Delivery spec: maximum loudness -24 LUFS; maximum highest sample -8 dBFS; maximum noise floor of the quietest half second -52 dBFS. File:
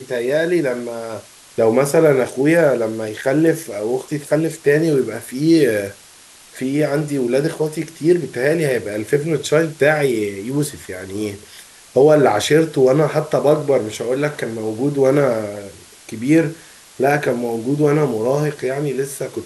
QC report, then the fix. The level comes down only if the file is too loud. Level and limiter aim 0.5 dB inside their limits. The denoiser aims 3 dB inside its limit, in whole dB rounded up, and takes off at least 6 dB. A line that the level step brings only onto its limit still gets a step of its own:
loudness -18.0 LUFS: fail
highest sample -3.0 dBFS: fail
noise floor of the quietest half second -45 dBFS: fail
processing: noise reduction 6 dB, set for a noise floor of -45 dBFS; trim -6.5 dB

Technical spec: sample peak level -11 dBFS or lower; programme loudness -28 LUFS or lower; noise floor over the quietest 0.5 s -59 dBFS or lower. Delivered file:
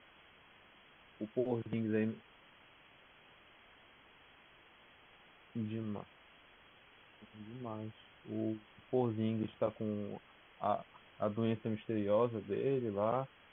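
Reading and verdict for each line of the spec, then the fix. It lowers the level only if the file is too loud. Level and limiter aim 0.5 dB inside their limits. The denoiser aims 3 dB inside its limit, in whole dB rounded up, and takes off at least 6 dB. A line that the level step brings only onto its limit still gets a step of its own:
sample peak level -20.5 dBFS: pass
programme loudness -38.0 LUFS: pass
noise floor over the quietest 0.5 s -63 dBFS: pass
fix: none needed

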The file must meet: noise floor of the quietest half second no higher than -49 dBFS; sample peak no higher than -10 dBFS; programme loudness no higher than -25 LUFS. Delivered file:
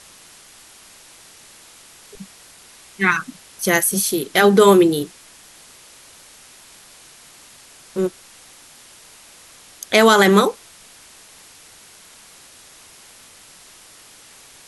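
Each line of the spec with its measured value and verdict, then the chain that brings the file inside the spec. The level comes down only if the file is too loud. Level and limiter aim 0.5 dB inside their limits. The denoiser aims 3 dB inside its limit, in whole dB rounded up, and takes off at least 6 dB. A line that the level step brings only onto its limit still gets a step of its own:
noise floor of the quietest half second -46 dBFS: fail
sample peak -2.0 dBFS: fail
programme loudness -16.0 LUFS: fail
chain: trim -9.5 dB

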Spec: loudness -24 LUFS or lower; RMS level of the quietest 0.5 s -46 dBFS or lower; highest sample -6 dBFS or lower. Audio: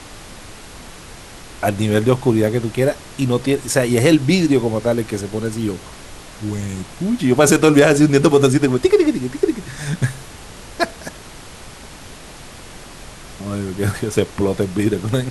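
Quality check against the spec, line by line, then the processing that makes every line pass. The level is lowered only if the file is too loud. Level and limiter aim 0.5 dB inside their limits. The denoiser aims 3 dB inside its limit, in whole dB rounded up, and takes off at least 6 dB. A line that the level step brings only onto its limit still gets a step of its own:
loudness -17.5 LUFS: fail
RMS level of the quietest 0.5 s -37 dBFS: fail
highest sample -1.5 dBFS: fail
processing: noise reduction 6 dB, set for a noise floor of -37 dBFS; trim -7 dB

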